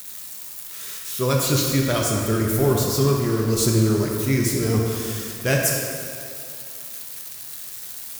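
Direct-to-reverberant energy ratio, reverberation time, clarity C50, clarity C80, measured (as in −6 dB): −1.5 dB, 2.5 s, 0.5 dB, 2.0 dB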